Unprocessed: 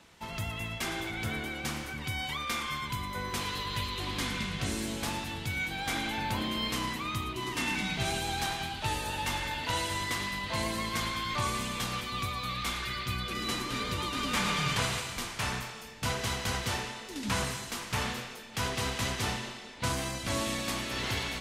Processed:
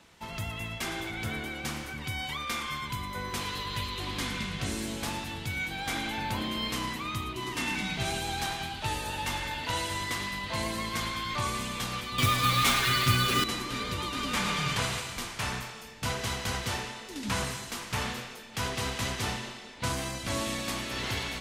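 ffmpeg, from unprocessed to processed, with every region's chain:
ffmpeg -i in.wav -filter_complex "[0:a]asettb=1/sr,asplit=3[link_01][link_02][link_03];[link_01]atrim=end=12.184[link_04];[link_02]atrim=start=12.18:end=13.44,asetpts=PTS-STARTPTS,afade=type=in:duration=0.004:curve=qsin,afade=type=out:start_time=1.256:duration=0.004:curve=qsin,aecho=1:1:7.4:0.93,atrim=end_sample=55566,acontrast=80,acrusher=bits=4:mix=0:aa=0.5[link_05];[link_03]atrim=start=13.436[link_06];[link_04][link_05]acrossfade=duration=0.004:curve1=hsin:curve2=qsin[link_07];[link_07][link_06]acrossfade=duration=0.004:curve1=qsin:curve2=hsin" out.wav

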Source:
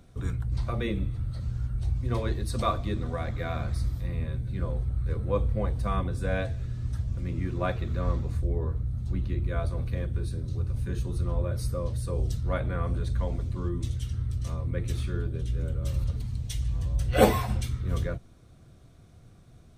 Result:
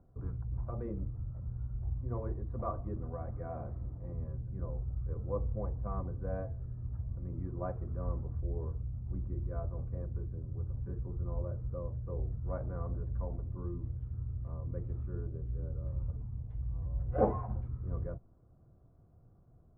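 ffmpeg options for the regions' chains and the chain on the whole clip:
ffmpeg -i in.wav -filter_complex "[0:a]asettb=1/sr,asplit=3[link_01][link_02][link_03];[link_01]atrim=end=3.494[link_04];[link_02]atrim=start=3.49:end=4.13,asetpts=PTS-STARTPTS,afade=type=in:duration=0.004:curve=qsin,afade=type=out:start_time=0.636:duration=0.004:curve=qsin,equalizer=frequency=1200:width_type=o:width=1.6:gain=-9.5,asplit=2[link_05][link_06];[link_06]highpass=frequency=720:poles=1,volume=18dB,asoftclip=type=tanh:threshold=-19dB[link_07];[link_05][link_07]amix=inputs=2:normalize=0,lowpass=frequency=1400:poles=1,volume=-6dB[link_08];[link_03]atrim=start=4.126[link_09];[link_04][link_08]acrossfade=duration=0.004:curve1=hsin:curve2=qsin[link_10];[link_10][link_09]acrossfade=duration=0.004:curve1=qsin:curve2=hsin,lowpass=frequency=1100:width=0.5412,lowpass=frequency=1100:width=1.3066,equalizer=frequency=230:width_type=o:width=0.77:gain=-2.5,volume=-8dB" out.wav

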